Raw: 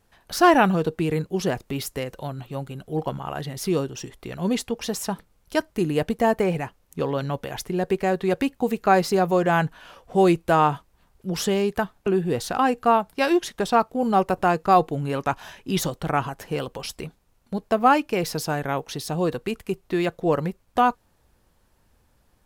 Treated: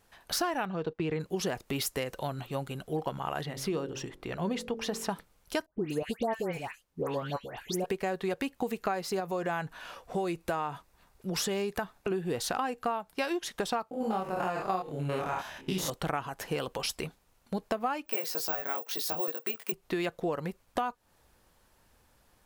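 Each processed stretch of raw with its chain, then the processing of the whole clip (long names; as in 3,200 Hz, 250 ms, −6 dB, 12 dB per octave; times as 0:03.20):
0:00.65–0:01.20: noise gate −32 dBFS, range −13 dB + high-frequency loss of the air 160 metres
0:03.43–0:05.09: high-shelf EQ 4,200 Hz −11.5 dB + hum removal 45.1 Hz, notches 13
0:05.66–0:07.86: all-pass dispersion highs, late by 148 ms, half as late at 1,800 Hz + expander for the loud parts, over −39 dBFS
0:09.20–0:12.11: notch filter 3,100 Hz, Q 15 + downward compressor 1.5 to 1, threshold −30 dBFS
0:13.91–0:15.90: spectrum averaged block by block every 100 ms + double-tracking delay 27 ms −3 dB + one half of a high-frequency compander decoder only
0:18.06–0:19.72: high-pass filter 330 Hz + double-tracking delay 19 ms −3 dB + bad sample-rate conversion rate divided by 2×, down filtered, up zero stuff
whole clip: low-shelf EQ 380 Hz −7 dB; downward compressor 10 to 1, threshold −30 dBFS; level +2 dB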